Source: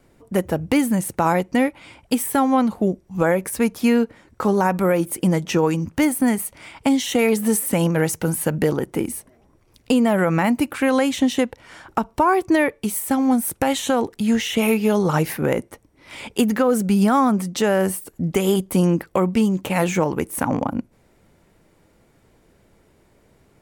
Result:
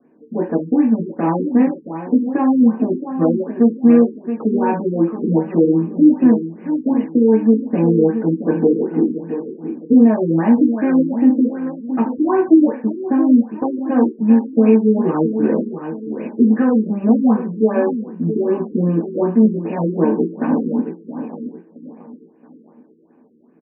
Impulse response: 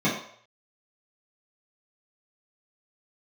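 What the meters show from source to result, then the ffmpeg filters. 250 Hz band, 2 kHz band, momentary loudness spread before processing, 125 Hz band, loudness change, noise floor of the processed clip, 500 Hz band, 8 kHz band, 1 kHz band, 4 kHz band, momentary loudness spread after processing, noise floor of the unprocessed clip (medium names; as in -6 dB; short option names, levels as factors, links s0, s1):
+6.5 dB, -9.0 dB, 7 LU, +0.5 dB, +4.0 dB, -49 dBFS, +2.5 dB, under -40 dB, -3.5 dB, under -25 dB, 10 LU, -58 dBFS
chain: -filter_complex "[0:a]equalizer=f=2600:t=o:w=0.77:g=-2.5,aresample=16000,aeval=exprs='clip(val(0),-1,0.133)':c=same,aresample=44100,aecho=1:1:672|1344|2016|2688:0.316|0.108|0.0366|0.0124[s0];[1:a]atrim=start_sample=2205,asetrate=66150,aresample=44100[s1];[s0][s1]afir=irnorm=-1:irlink=0,afftfilt=real='re*lt(b*sr/1024,460*pow(3000/460,0.5+0.5*sin(2*PI*2.6*pts/sr)))':imag='im*lt(b*sr/1024,460*pow(3000/460,0.5+0.5*sin(2*PI*2.6*pts/sr)))':win_size=1024:overlap=0.75,volume=0.2"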